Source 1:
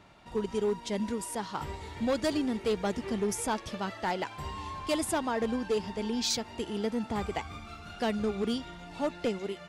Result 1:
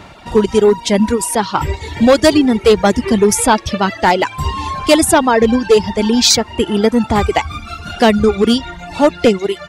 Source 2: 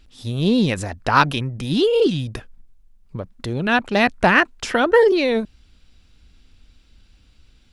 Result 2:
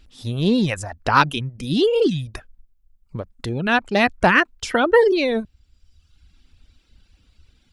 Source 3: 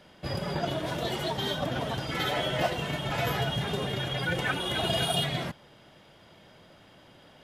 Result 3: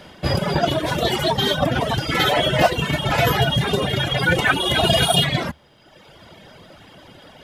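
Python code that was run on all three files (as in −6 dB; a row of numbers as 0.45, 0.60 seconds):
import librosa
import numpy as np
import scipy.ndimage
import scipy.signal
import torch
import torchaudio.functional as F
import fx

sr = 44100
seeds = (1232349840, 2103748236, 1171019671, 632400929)

y = fx.dereverb_blind(x, sr, rt60_s=1.1)
y = fx.peak_eq(y, sr, hz=74.0, db=5.5, octaves=0.27)
y = librosa.util.normalize(y) * 10.0 ** (-1.5 / 20.0)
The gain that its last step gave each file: +20.0, 0.0, +12.5 decibels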